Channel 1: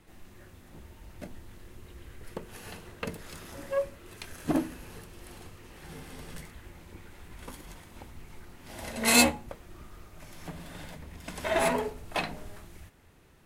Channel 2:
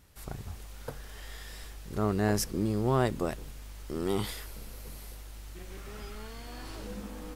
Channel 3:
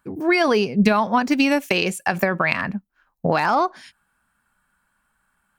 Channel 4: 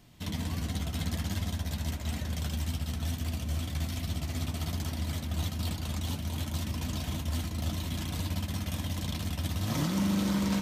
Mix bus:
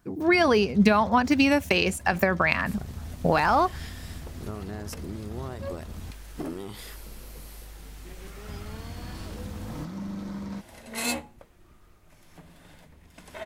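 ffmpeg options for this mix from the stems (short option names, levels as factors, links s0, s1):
-filter_complex "[0:a]adelay=1900,volume=0.376[s0];[1:a]acompressor=threshold=0.02:ratio=10,adelay=2500,volume=1.12[s1];[2:a]volume=0.75[s2];[3:a]acrossover=split=5000[s3][s4];[s4]acompressor=threshold=0.00141:ratio=4:attack=1:release=60[s5];[s3][s5]amix=inputs=2:normalize=0,equalizer=f=3000:w=1.5:g=-10,volume=0.447,asplit=3[s6][s7][s8];[s6]atrim=end=6.11,asetpts=PTS-STARTPTS,afade=t=out:st=6.106:d=0.004:c=hsin[s9];[s7]atrim=start=6.11:end=8.47,asetpts=PTS-STARTPTS,volume=0[s10];[s8]atrim=start=8.47,asetpts=PTS-STARTPTS,afade=t=in:d=0.004:c=hsin[s11];[s9][s10][s11]concat=n=3:v=0:a=1[s12];[s0][s1][s2][s12]amix=inputs=4:normalize=0"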